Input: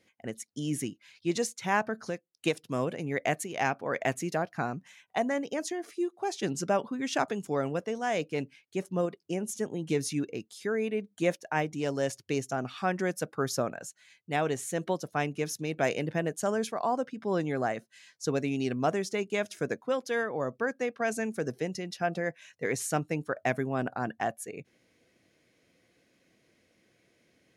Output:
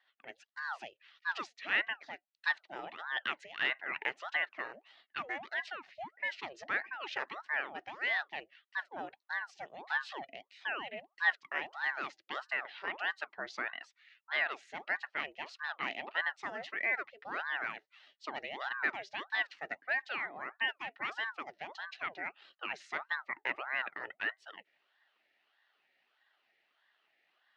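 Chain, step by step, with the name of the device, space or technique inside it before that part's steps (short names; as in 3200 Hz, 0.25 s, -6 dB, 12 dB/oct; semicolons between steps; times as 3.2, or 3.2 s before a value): voice changer toy (ring modulator with a swept carrier 780 Hz, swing 75%, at 1.6 Hz; speaker cabinet 460–4300 Hz, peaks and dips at 490 Hz -7 dB, 990 Hz -6 dB, 1900 Hz +10 dB, 2800 Hz +6 dB, 4100 Hz +3 dB); gain -5.5 dB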